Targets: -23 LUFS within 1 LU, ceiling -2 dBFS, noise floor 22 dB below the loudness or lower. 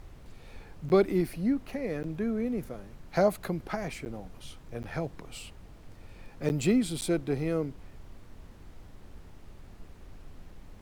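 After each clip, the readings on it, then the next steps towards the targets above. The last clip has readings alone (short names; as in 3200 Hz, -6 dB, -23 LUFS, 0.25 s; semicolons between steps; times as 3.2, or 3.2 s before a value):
dropouts 6; longest dropout 9.9 ms; noise floor -51 dBFS; noise floor target -53 dBFS; loudness -30.5 LUFS; peak -12.0 dBFS; loudness target -23.0 LUFS
-> interpolate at 0.89/2.03/4.05/4.83/6.49/7.01, 9.9 ms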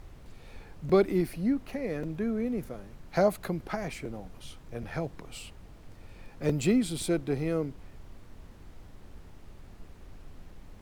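dropouts 0; noise floor -51 dBFS; noise floor target -53 dBFS
-> noise print and reduce 6 dB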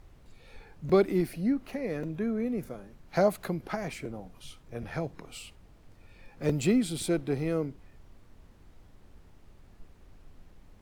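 noise floor -56 dBFS; loudness -30.5 LUFS; peak -12.0 dBFS; loudness target -23.0 LUFS
-> gain +7.5 dB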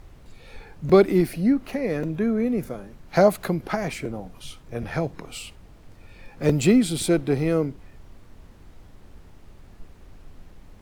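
loudness -23.0 LUFS; peak -4.5 dBFS; noise floor -49 dBFS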